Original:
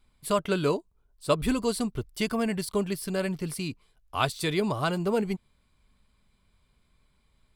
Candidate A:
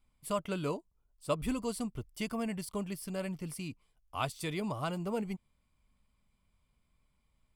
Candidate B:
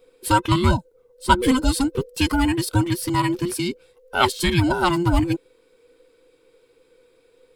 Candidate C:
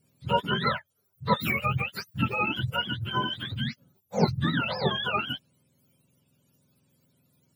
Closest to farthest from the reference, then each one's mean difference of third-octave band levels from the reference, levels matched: A, B, C; 1.0, 6.5, 12.5 decibels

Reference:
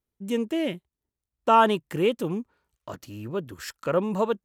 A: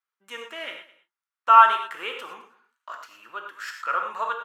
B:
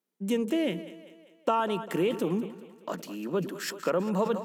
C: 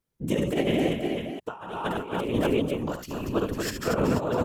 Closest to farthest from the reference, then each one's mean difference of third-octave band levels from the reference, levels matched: B, A, C; 7.0, 10.0, 14.0 decibels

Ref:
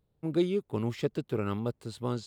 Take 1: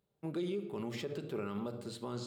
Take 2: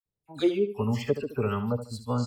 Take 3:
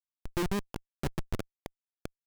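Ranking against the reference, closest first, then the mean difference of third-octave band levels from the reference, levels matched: 1, 2, 3; 6.0, 9.0, 16.5 decibels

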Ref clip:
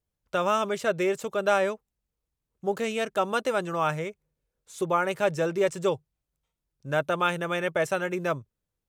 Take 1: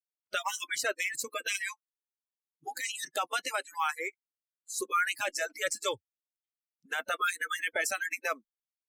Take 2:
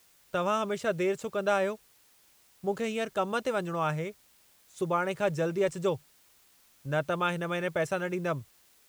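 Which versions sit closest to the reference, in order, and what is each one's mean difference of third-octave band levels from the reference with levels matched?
2, 1; 2.0, 12.5 decibels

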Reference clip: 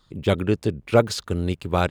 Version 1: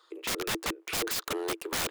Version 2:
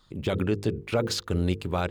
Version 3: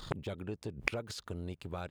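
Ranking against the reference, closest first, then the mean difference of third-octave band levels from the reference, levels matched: 2, 3, 1; 4.0, 5.5, 15.0 decibels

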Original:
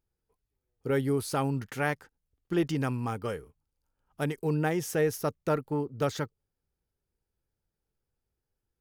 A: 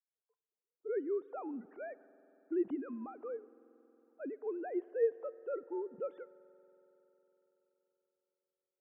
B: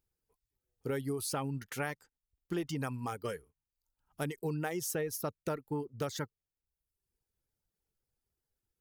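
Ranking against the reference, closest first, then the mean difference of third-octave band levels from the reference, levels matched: B, A; 4.0, 16.5 decibels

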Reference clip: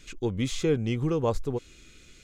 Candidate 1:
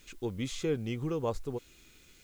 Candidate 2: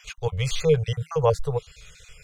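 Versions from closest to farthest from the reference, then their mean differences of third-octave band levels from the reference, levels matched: 1, 2; 2.5, 6.5 decibels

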